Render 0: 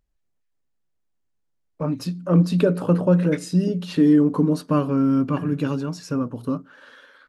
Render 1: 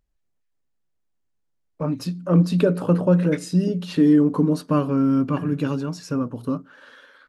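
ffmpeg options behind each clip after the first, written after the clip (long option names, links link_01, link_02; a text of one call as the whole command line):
ffmpeg -i in.wav -af anull out.wav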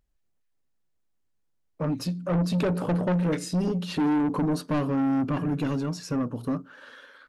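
ffmpeg -i in.wav -af "asoftclip=type=tanh:threshold=-21dB" out.wav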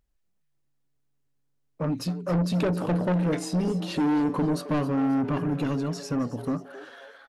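ffmpeg -i in.wav -filter_complex "[0:a]asplit=5[link_01][link_02][link_03][link_04][link_05];[link_02]adelay=267,afreqshift=140,volume=-15.5dB[link_06];[link_03]adelay=534,afreqshift=280,volume=-22.6dB[link_07];[link_04]adelay=801,afreqshift=420,volume=-29.8dB[link_08];[link_05]adelay=1068,afreqshift=560,volume=-36.9dB[link_09];[link_01][link_06][link_07][link_08][link_09]amix=inputs=5:normalize=0" out.wav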